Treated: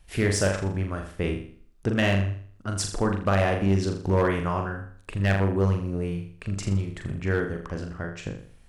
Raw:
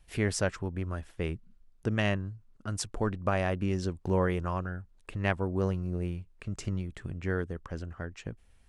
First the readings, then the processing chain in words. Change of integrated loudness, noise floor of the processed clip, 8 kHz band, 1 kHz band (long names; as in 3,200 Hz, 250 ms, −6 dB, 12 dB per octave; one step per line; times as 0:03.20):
+6.0 dB, −52 dBFS, +6.5 dB, +6.0 dB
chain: flutter between parallel walls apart 7 metres, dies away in 0.51 s
gain into a clipping stage and back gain 20 dB
level +5 dB